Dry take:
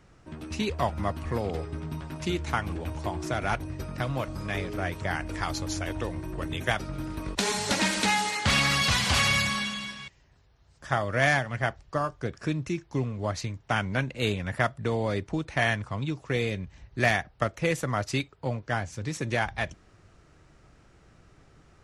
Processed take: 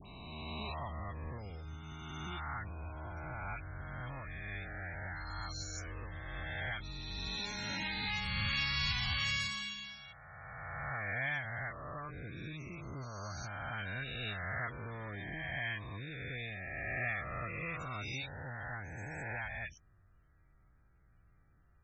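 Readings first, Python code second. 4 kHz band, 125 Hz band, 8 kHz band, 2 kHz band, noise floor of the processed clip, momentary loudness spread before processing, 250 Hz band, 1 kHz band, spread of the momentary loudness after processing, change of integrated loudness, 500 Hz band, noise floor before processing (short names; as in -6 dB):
-9.0 dB, -11.0 dB, -17.0 dB, -9.0 dB, -66 dBFS, 11 LU, -16.0 dB, -13.0 dB, 12 LU, -11.0 dB, -17.5 dB, -59 dBFS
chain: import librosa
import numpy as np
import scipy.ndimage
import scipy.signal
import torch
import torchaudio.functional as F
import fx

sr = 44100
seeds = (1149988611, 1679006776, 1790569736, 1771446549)

y = fx.spec_swells(x, sr, rise_s=2.62)
y = fx.low_shelf(y, sr, hz=110.0, db=8.0)
y = fx.spec_topn(y, sr, count=64)
y = fx.tone_stack(y, sr, knobs='5-5-5')
y = fx.dispersion(y, sr, late='highs', ms=63.0, hz=1600.0)
y = y * librosa.db_to_amplitude(-3.5)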